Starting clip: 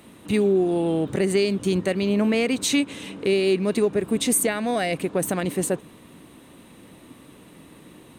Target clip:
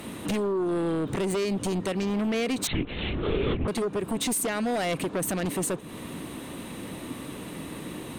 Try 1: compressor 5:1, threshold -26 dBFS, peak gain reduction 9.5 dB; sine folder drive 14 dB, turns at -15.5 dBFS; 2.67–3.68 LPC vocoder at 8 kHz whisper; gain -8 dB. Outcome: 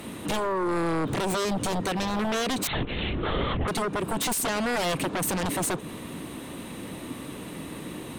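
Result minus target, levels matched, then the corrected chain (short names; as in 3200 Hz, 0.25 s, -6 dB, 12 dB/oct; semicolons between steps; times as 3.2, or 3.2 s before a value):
compressor: peak gain reduction -5 dB
compressor 5:1, threshold -32 dBFS, peak gain reduction 14.5 dB; sine folder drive 14 dB, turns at -15.5 dBFS; 2.67–3.68 LPC vocoder at 8 kHz whisper; gain -8 dB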